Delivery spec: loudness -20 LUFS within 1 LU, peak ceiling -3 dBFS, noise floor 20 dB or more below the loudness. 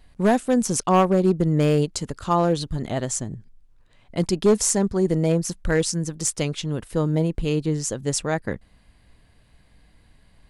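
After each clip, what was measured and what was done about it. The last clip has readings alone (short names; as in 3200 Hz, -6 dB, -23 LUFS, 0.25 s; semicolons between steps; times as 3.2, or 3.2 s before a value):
clipped 0.6%; flat tops at -11.0 dBFS; loudness -22.5 LUFS; peak -11.0 dBFS; loudness target -20.0 LUFS
-> clip repair -11 dBFS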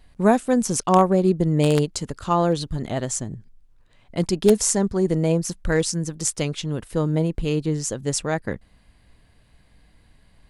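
clipped 0.0%; loudness -22.0 LUFS; peak -2.0 dBFS; loudness target -20.0 LUFS
-> gain +2 dB; limiter -3 dBFS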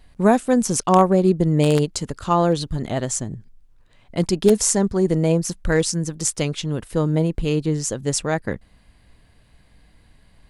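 loudness -20.5 LUFS; peak -3.0 dBFS; noise floor -55 dBFS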